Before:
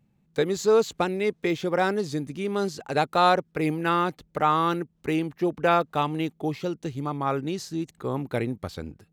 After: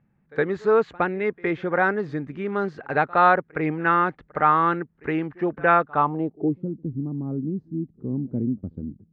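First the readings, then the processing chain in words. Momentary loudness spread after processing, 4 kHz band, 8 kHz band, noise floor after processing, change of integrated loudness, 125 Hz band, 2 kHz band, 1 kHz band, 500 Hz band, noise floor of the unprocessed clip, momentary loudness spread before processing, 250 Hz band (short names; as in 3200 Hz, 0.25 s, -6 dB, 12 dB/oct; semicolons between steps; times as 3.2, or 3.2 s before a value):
12 LU, under -10 dB, under -25 dB, -65 dBFS, +2.5 dB, +1.5 dB, +6.0 dB, +3.5 dB, +0.5 dB, -67 dBFS, 10 LU, +1.5 dB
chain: low-pass sweep 1700 Hz -> 240 Hz, 5.9–6.63; pre-echo 65 ms -24 dB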